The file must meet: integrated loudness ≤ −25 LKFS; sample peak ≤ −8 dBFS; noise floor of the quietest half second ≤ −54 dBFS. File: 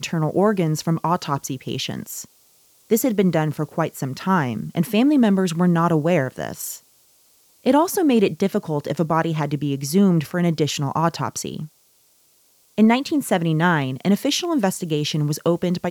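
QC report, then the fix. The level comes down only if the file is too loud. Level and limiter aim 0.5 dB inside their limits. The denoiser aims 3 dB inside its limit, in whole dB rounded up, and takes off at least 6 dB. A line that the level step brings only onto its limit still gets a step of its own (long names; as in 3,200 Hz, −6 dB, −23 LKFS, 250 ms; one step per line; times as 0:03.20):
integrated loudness −21.0 LKFS: out of spec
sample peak −6.0 dBFS: out of spec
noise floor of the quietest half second −59 dBFS: in spec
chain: level −4.5 dB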